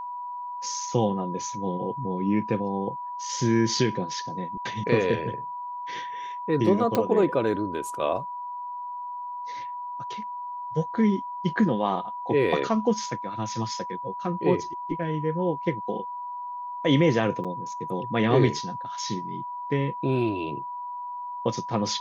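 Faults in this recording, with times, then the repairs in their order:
whine 980 Hz -32 dBFS
6.95 s: pop -10 dBFS
17.44–17.45 s: dropout 6.8 ms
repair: de-click; band-stop 980 Hz, Q 30; interpolate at 17.44 s, 6.8 ms

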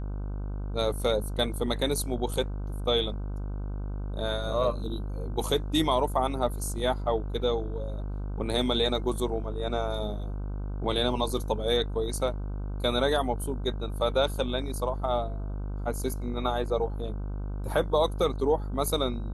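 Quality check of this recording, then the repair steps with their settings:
buzz 50 Hz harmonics 31 -33 dBFS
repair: de-hum 50 Hz, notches 31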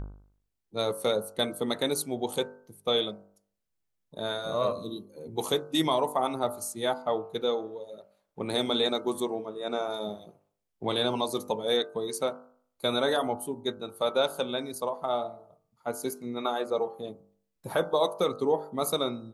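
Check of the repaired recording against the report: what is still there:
nothing left

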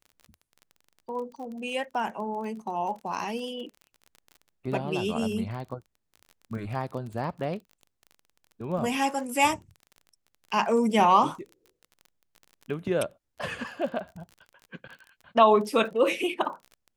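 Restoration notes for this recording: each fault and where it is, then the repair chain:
crackle 31 per s -37 dBFS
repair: de-click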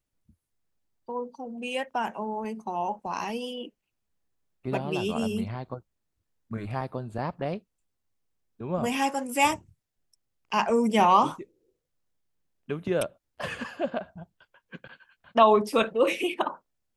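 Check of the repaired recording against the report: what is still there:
nothing left

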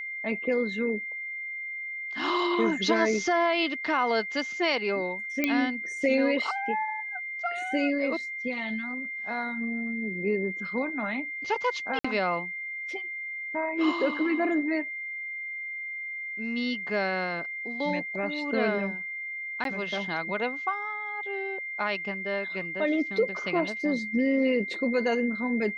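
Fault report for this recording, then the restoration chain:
whine 2.1 kHz -33 dBFS
5.44 s: pop -11 dBFS
11.99–12.04 s: dropout 55 ms
19.64–19.65 s: dropout 12 ms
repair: de-click; band-stop 2.1 kHz, Q 30; interpolate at 11.99 s, 55 ms; interpolate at 19.64 s, 12 ms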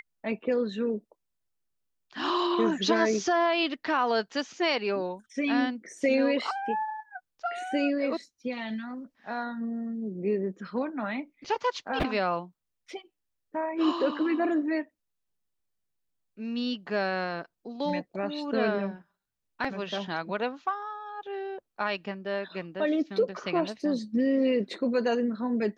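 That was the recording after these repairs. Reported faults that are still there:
nothing left

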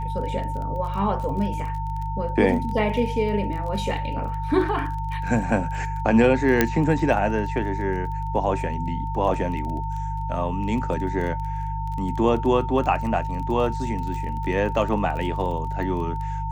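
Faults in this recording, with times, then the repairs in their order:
crackle 21 per s -31 dBFS
hum 50 Hz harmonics 3 -29 dBFS
whine 900 Hz -30 dBFS
6.61 s: pop -3 dBFS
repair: de-click; band-stop 900 Hz, Q 30; de-hum 50 Hz, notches 3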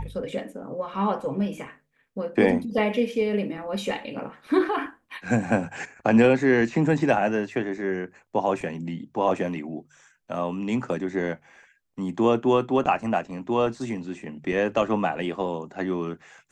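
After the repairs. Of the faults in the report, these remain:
nothing left

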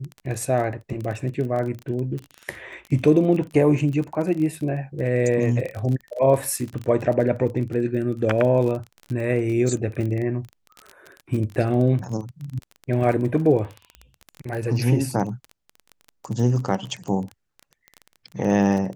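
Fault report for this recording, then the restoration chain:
crackle 24 per s -28 dBFS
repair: de-click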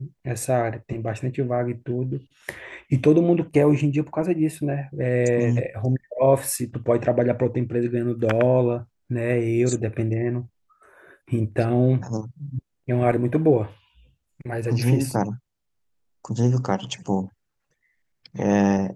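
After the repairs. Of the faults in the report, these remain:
nothing left

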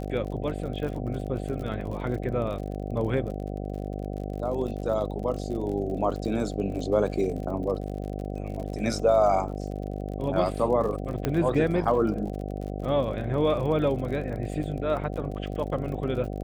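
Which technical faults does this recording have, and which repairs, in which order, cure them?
buzz 50 Hz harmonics 15 -33 dBFS
crackle 46 per s -35 dBFS
11.25 s: pop -12 dBFS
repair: de-click; de-hum 50 Hz, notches 15

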